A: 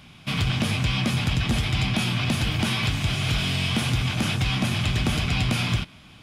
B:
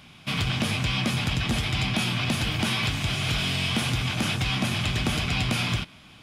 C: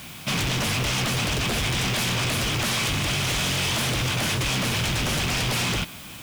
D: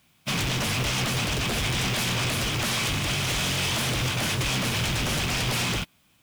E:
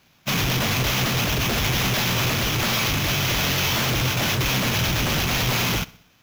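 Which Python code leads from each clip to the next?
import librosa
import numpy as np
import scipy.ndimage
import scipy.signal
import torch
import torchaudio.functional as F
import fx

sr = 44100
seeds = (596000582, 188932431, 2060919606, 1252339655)

y1 = fx.low_shelf(x, sr, hz=180.0, db=-5.0)
y2 = fx.fold_sine(y1, sr, drive_db=12, ceiling_db=-13.5)
y2 = fx.quant_dither(y2, sr, seeds[0], bits=6, dither='triangular')
y2 = y2 * librosa.db_to_amplitude(-8.0)
y3 = fx.upward_expand(y2, sr, threshold_db=-39.0, expansion=2.5)
y4 = fx.sample_hold(y3, sr, seeds[1], rate_hz=8900.0, jitter_pct=0)
y4 = fx.echo_feedback(y4, sr, ms=63, feedback_pct=53, wet_db=-22.0)
y4 = y4 * librosa.db_to_amplitude(4.0)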